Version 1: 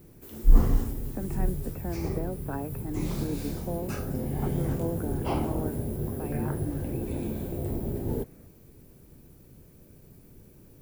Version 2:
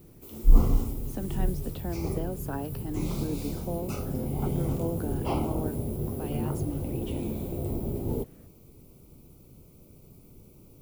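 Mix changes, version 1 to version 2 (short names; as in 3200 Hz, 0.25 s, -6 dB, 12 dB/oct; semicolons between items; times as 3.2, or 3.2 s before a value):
speech: remove brick-wall FIR low-pass 2700 Hz; background: add Butterworth band-stop 1700 Hz, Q 2.6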